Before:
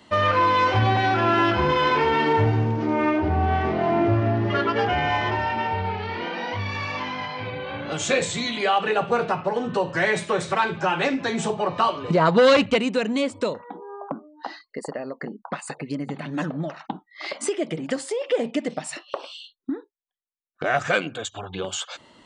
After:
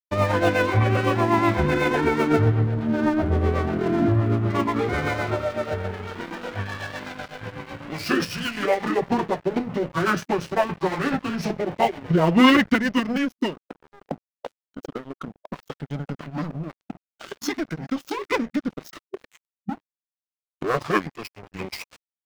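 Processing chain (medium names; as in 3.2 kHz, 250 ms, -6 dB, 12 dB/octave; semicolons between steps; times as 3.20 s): rotary cabinet horn 8 Hz; crossover distortion -35.5 dBFS; formant shift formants -6 st; trim +4 dB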